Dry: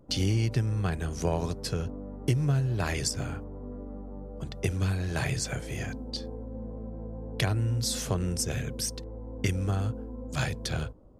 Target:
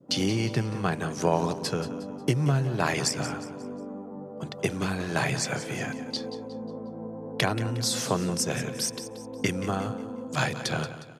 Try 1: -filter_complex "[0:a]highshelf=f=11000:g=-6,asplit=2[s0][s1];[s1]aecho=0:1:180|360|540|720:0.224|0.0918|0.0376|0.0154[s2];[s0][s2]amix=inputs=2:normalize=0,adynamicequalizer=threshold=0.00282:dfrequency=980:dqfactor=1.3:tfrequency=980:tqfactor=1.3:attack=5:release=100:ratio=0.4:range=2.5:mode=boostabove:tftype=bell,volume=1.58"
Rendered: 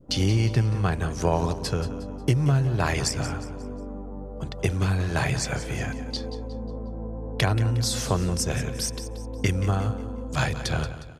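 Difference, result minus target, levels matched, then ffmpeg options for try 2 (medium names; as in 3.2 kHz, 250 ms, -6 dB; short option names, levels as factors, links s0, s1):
125 Hz band +3.5 dB
-filter_complex "[0:a]highshelf=f=11000:g=-6,asplit=2[s0][s1];[s1]aecho=0:1:180|360|540|720:0.224|0.0918|0.0376|0.0154[s2];[s0][s2]amix=inputs=2:normalize=0,adynamicequalizer=threshold=0.00282:dfrequency=980:dqfactor=1.3:tfrequency=980:tqfactor=1.3:attack=5:release=100:ratio=0.4:range=2.5:mode=boostabove:tftype=bell,highpass=f=140:w=0.5412,highpass=f=140:w=1.3066,volume=1.58"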